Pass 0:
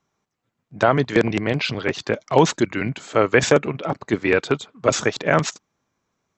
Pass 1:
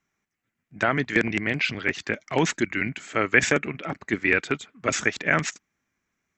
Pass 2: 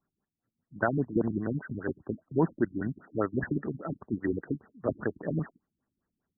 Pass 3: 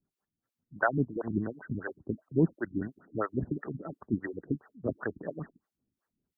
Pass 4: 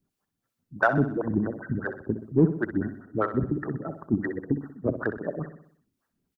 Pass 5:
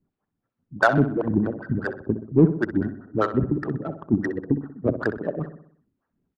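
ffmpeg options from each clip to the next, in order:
-af "equalizer=f=125:t=o:w=1:g=-7,equalizer=f=500:t=o:w=1:g=-8,equalizer=f=1000:t=o:w=1:g=-8,equalizer=f=2000:t=o:w=1:g=8,equalizer=f=4000:t=o:w=1:g=-7,volume=0.891"
-af "highshelf=f=2600:g=-12,afftfilt=real='re*lt(b*sr/1024,300*pow(2000/300,0.5+0.5*sin(2*PI*5*pts/sr)))':imag='im*lt(b*sr/1024,300*pow(2000/300,0.5+0.5*sin(2*PI*5*pts/sr)))':win_size=1024:overlap=0.75,volume=0.841"
-filter_complex "[0:a]acrossover=split=490[s0][s1];[s0]aeval=exprs='val(0)*(1-1/2+1/2*cos(2*PI*2.9*n/s))':c=same[s2];[s1]aeval=exprs='val(0)*(1-1/2-1/2*cos(2*PI*2.9*n/s))':c=same[s3];[s2][s3]amix=inputs=2:normalize=0,volume=1.41"
-filter_complex "[0:a]asplit=2[s0][s1];[s1]asoftclip=type=tanh:threshold=0.0668,volume=0.355[s2];[s0][s2]amix=inputs=2:normalize=0,aecho=1:1:63|126|189|252|315|378:0.299|0.152|0.0776|0.0396|0.0202|0.0103,volume=1.5"
-af "adynamicsmooth=sensitivity=2:basefreq=1800,volume=1.58"

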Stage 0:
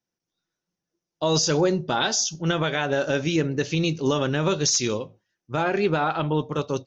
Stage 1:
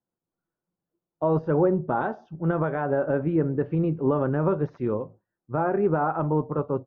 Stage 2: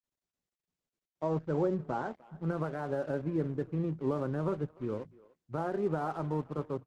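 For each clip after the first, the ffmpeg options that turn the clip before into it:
-af "lowpass=f=1300:w=0.5412,lowpass=f=1300:w=1.3066"
-filter_complex "[0:a]acrossover=split=290[s0][s1];[s1]aeval=exprs='sgn(val(0))*max(abs(val(0))-0.0075,0)':c=same[s2];[s0][s2]amix=inputs=2:normalize=0,asplit=2[s3][s4];[s4]adelay=300,highpass=300,lowpass=3400,asoftclip=type=hard:threshold=0.0944,volume=0.0891[s5];[s3][s5]amix=inputs=2:normalize=0,volume=0.398" -ar 48000 -c:a libopus -b:a 16k

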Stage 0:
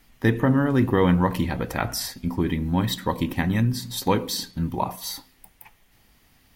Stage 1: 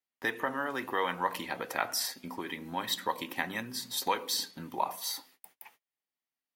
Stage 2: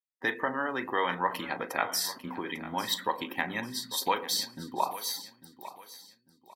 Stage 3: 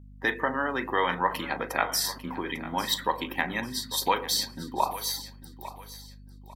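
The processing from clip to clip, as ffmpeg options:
-filter_complex "[0:a]highpass=370,agate=range=0.0282:threshold=0.00178:ratio=16:detection=peak,acrossover=split=640|5700[s0][s1][s2];[s0]acompressor=threshold=0.0158:ratio=6[s3];[s3][s1][s2]amix=inputs=3:normalize=0,volume=0.708"
-filter_complex "[0:a]asplit=2[s0][s1];[s1]adelay=39,volume=0.211[s2];[s0][s2]amix=inputs=2:normalize=0,afftdn=nr=19:nf=-47,aecho=1:1:848|1696|2544:0.178|0.0569|0.0182,volume=1.26"
-af "aeval=exprs='val(0)+0.00316*(sin(2*PI*50*n/s)+sin(2*PI*2*50*n/s)/2+sin(2*PI*3*50*n/s)/3+sin(2*PI*4*50*n/s)/4+sin(2*PI*5*50*n/s)/5)':c=same,volume=1.41"

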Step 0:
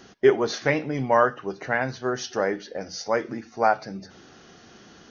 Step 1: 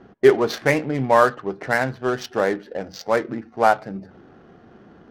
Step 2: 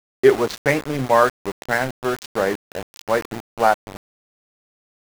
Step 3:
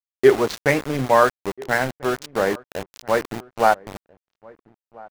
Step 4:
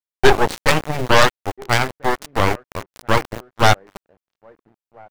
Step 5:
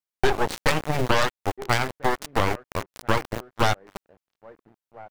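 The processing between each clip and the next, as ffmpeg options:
-af "adynamicsmooth=sensitivity=6.5:basefreq=980,volume=1.58"
-af "aeval=exprs='val(0)*gte(abs(val(0)),0.0562)':c=same"
-filter_complex "[0:a]asplit=2[s0][s1];[s1]adelay=1341,volume=0.0708,highshelf=f=4000:g=-30.2[s2];[s0][s2]amix=inputs=2:normalize=0"
-af "aeval=exprs='0.891*(cos(1*acos(clip(val(0)/0.891,-1,1)))-cos(1*PI/2))+0.00631*(cos(3*acos(clip(val(0)/0.891,-1,1)))-cos(3*PI/2))+0.0355*(cos(6*acos(clip(val(0)/0.891,-1,1)))-cos(6*PI/2))+0.398*(cos(8*acos(clip(val(0)/0.891,-1,1)))-cos(8*PI/2))':c=same,volume=0.794"
-af "acompressor=threshold=0.158:ratio=6"

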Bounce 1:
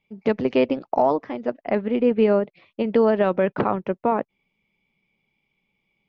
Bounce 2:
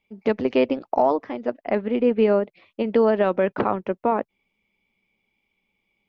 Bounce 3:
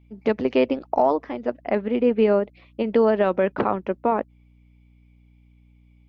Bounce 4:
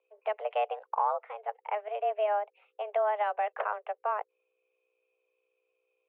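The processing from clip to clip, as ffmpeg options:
-af "equalizer=f=150:t=o:w=0.28:g=-15"
-af "aeval=exprs='val(0)+0.00224*(sin(2*PI*60*n/s)+sin(2*PI*2*60*n/s)/2+sin(2*PI*3*60*n/s)/3+sin(2*PI*4*60*n/s)/4+sin(2*PI*5*60*n/s)/5)':c=same"
-af "highpass=f=300:t=q:w=0.5412,highpass=f=300:t=q:w=1.307,lowpass=f=2800:t=q:w=0.5176,lowpass=f=2800:t=q:w=0.7071,lowpass=f=2800:t=q:w=1.932,afreqshift=210,volume=0.355"

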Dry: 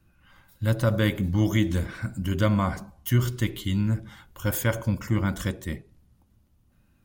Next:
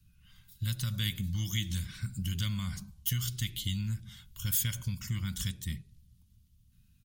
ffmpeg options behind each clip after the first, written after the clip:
-filter_complex "[0:a]firequalizer=gain_entry='entry(160,0);entry(330,-20);entry(570,-27);entry(1100,-16);entry(3300,2)':delay=0.05:min_phase=1,acrossover=split=660|1500[s0][s1][s2];[s0]acompressor=threshold=0.0282:ratio=6[s3];[s1]alimiter=level_in=14.1:limit=0.0631:level=0:latency=1:release=119,volume=0.0708[s4];[s3][s4][s2]amix=inputs=3:normalize=0"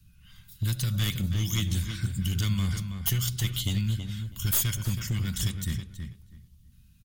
-filter_complex "[0:a]aeval=exprs='clip(val(0),-1,0.0316)':c=same,asplit=2[s0][s1];[s1]adelay=324,lowpass=f=2800:p=1,volume=0.447,asplit=2[s2][s3];[s3]adelay=324,lowpass=f=2800:p=1,volume=0.19,asplit=2[s4][s5];[s5]adelay=324,lowpass=f=2800:p=1,volume=0.19[s6];[s2][s4][s6]amix=inputs=3:normalize=0[s7];[s0][s7]amix=inputs=2:normalize=0,volume=2"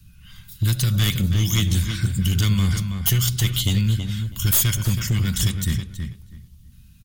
-af "asoftclip=type=tanh:threshold=0.141,volume=2.66"

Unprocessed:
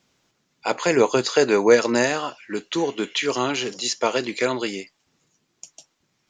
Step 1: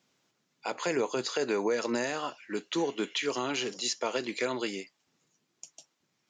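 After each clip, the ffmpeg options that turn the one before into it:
-af "highpass=130,alimiter=limit=0.211:level=0:latency=1:release=141,volume=0.501"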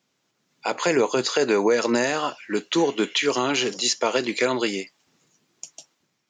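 -af "dynaudnorm=f=130:g=7:m=2.82"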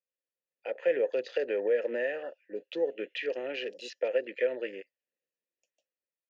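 -filter_complex "[0:a]afwtdn=0.0282,asplit=3[s0][s1][s2];[s0]bandpass=f=530:t=q:w=8,volume=1[s3];[s1]bandpass=f=1840:t=q:w=8,volume=0.501[s4];[s2]bandpass=f=2480:t=q:w=8,volume=0.355[s5];[s3][s4][s5]amix=inputs=3:normalize=0"

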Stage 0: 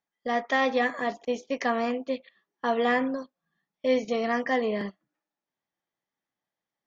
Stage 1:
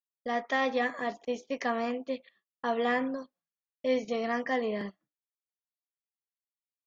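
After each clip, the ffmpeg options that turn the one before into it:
-af "agate=range=0.0224:threshold=0.00251:ratio=3:detection=peak,volume=0.631"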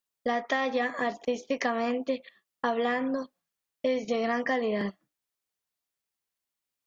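-af "acompressor=threshold=0.0224:ratio=6,volume=2.66"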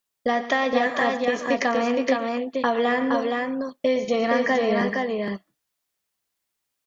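-af "aecho=1:1:114|143|280|467:0.2|0.126|0.112|0.668,volume=1.88"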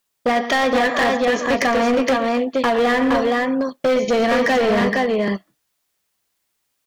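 -af "asoftclip=type=hard:threshold=0.0891,volume=2.37"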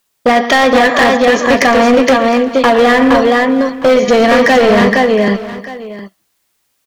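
-af "aecho=1:1:712:0.168,volume=2.66"

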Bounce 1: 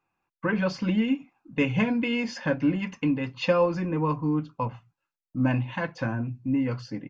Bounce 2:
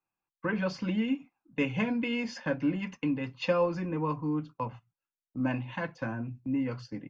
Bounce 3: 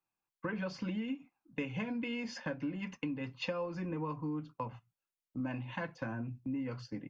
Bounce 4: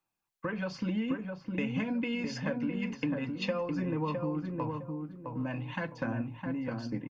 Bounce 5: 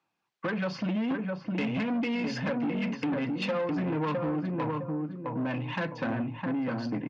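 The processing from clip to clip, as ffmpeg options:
-filter_complex "[0:a]agate=range=0.398:threshold=0.0112:ratio=16:detection=peak,acrossover=split=160[s0][s1];[s0]alimiter=level_in=3.35:limit=0.0631:level=0:latency=1,volume=0.299[s2];[s2][s1]amix=inputs=2:normalize=0,volume=0.596"
-af "acompressor=threshold=0.0251:ratio=6,volume=0.794"
-filter_complex "[0:a]aphaser=in_gain=1:out_gain=1:delay=1.7:decay=0.23:speed=1:type=sinusoidal,asplit=2[s0][s1];[s1]adelay=660,lowpass=f=1200:p=1,volume=0.668,asplit=2[s2][s3];[s3]adelay=660,lowpass=f=1200:p=1,volume=0.31,asplit=2[s4][s5];[s5]adelay=660,lowpass=f=1200:p=1,volume=0.31,asplit=2[s6][s7];[s7]adelay=660,lowpass=f=1200:p=1,volume=0.31[s8];[s2][s4][s6][s8]amix=inputs=4:normalize=0[s9];[s0][s9]amix=inputs=2:normalize=0,volume=1.41"
-af "asoftclip=type=tanh:threshold=0.02,highpass=130,lowpass=4200,volume=2.66"

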